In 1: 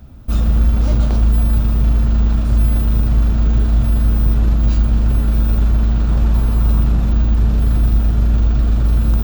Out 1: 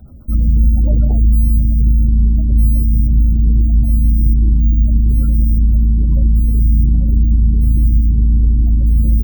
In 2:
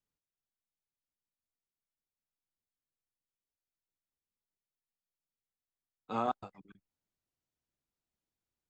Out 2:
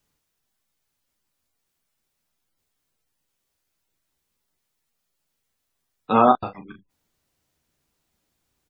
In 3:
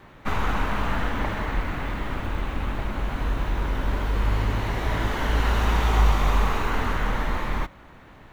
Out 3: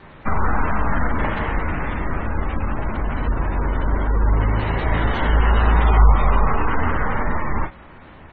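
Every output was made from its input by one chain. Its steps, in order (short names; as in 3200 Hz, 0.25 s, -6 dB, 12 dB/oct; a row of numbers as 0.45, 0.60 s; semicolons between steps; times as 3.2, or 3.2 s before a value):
early reflections 13 ms -9.5 dB, 37 ms -8 dB; spectral gate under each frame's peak -30 dB strong; normalise peaks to -2 dBFS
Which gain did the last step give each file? 0.0, +16.5, +4.5 dB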